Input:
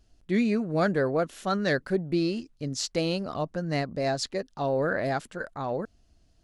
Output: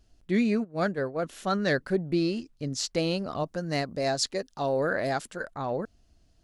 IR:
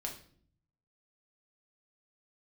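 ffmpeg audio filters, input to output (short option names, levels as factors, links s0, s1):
-filter_complex "[0:a]asplit=3[s0][s1][s2];[s0]afade=t=out:st=0.63:d=0.02[s3];[s1]agate=range=0.0224:threshold=0.112:ratio=3:detection=peak,afade=t=in:st=0.63:d=0.02,afade=t=out:st=1.22:d=0.02[s4];[s2]afade=t=in:st=1.22:d=0.02[s5];[s3][s4][s5]amix=inputs=3:normalize=0,asettb=1/sr,asplit=3[s6][s7][s8];[s6]atrim=end=3.434[s9];[s7]atrim=start=3.43:end=5.43,asetpts=PTS-STARTPTS,afade=t=in:d=0.004:c=qsin,afade=t=out:st=1.996:d=0.004:c=qsin,bass=f=250:g=-3,treble=f=4000:g=6[s10];[s8]atrim=start=5.426[s11];[s9][s10]acrossfade=d=0.004:c1=hsin:c2=qsin[s12];[s12][s11]acrossfade=d=0.004:c1=qsin:c2=hsin"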